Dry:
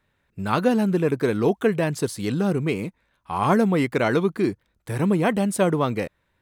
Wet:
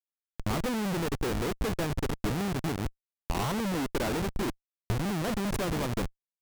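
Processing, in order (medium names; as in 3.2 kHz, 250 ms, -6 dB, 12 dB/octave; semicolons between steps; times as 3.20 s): on a send: filtered feedback delay 657 ms, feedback 26%, low-pass 1.3 kHz, level -14 dB; on the sum: Schmitt trigger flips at -23.5 dBFS; transient shaper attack +4 dB, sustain -6 dB; trim -7 dB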